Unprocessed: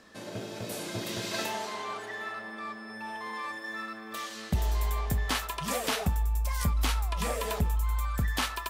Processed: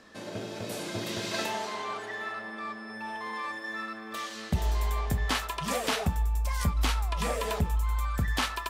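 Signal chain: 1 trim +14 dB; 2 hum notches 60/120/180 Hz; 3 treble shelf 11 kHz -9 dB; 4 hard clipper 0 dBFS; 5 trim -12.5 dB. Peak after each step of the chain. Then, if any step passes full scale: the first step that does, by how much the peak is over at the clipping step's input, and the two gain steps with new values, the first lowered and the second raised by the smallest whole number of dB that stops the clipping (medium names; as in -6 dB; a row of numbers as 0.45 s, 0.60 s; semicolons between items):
-4.5 dBFS, -3.0 dBFS, -3.0 dBFS, -3.0 dBFS, -15.5 dBFS; nothing clips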